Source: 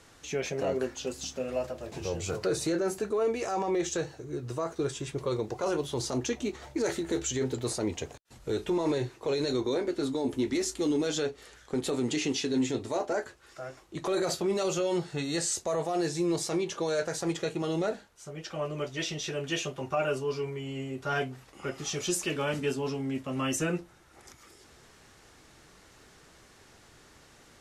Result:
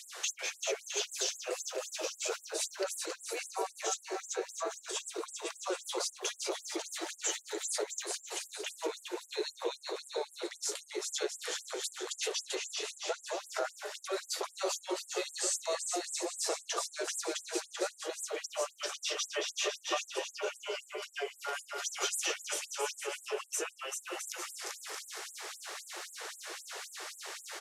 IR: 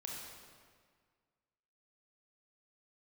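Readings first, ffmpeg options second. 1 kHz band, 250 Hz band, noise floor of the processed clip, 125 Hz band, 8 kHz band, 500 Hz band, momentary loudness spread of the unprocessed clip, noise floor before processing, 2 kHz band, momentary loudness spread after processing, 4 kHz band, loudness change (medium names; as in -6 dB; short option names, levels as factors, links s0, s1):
-3.5 dB, -15.5 dB, -59 dBFS, under -40 dB, +2.0 dB, -8.0 dB, 8 LU, -57 dBFS, -1.5 dB, 8 LU, +1.0 dB, -5.5 dB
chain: -filter_complex "[0:a]asplit=2[s0][s1];[s1]alimiter=level_in=1.78:limit=0.0631:level=0:latency=1,volume=0.562,volume=1.26[s2];[s0][s2]amix=inputs=2:normalize=0,acompressor=threshold=0.0158:ratio=10,aecho=1:1:390|663|854.1|987.9|1082:0.631|0.398|0.251|0.158|0.1,afftfilt=real='re*gte(b*sr/1024,320*pow(7400/320,0.5+0.5*sin(2*PI*3.8*pts/sr)))':imag='im*gte(b*sr/1024,320*pow(7400/320,0.5+0.5*sin(2*PI*3.8*pts/sr)))':win_size=1024:overlap=0.75,volume=2.11"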